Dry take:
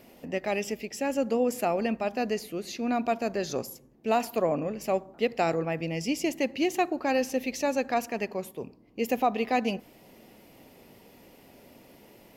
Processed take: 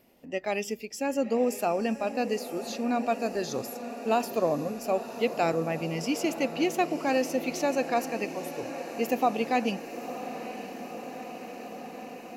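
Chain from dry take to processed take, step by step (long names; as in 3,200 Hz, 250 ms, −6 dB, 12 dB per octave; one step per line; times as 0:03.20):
noise reduction from a noise print of the clip's start 9 dB
feedback delay with all-pass diffusion 961 ms, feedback 76%, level −12 dB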